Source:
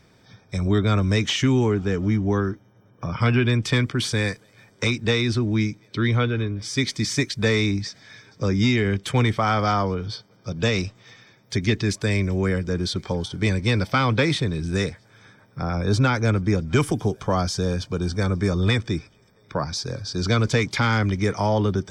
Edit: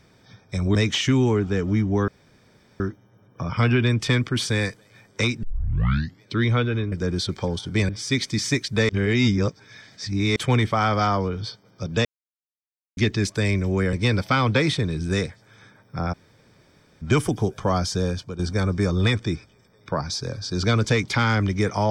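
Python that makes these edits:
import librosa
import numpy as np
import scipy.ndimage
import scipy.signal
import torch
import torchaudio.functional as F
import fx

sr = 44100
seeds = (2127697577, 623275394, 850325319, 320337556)

y = fx.edit(x, sr, fx.cut(start_s=0.75, length_s=0.35),
    fx.insert_room_tone(at_s=2.43, length_s=0.72),
    fx.tape_start(start_s=5.06, length_s=0.8),
    fx.reverse_span(start_s=7.55, length_s=1.47),
    fx.silence(start_s=10.71, length_s=0.92),
    fx.move(start_s=12.59, length_s=0.97, to_s=6.55),
    fx.room_tone_fill(start_s=15.76, length_s=0.89, crossfade_s=0.02),
    fx.fade_out_to(start_s=17.69, length_s=0.33, floor_db=-11.0), tone=tone)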